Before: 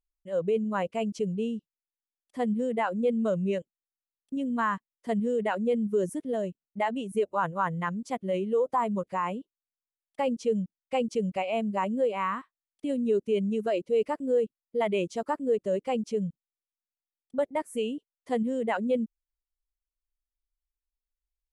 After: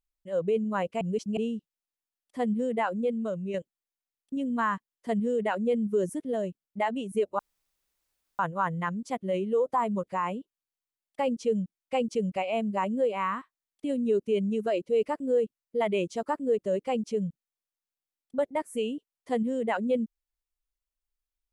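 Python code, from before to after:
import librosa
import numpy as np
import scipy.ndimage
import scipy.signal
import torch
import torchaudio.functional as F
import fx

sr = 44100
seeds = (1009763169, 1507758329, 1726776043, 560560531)

y = fx.edit(x, sr, fx.reverse_span(start_s=1.01, length_s=0.36),
    fx.fade_out_to(start_s=2.89, length_s=0.65, curve='qua', floor_db=-6.0),
    fx.insert_room_tone(at_s=7.39, length_s=1.0), tone=tone)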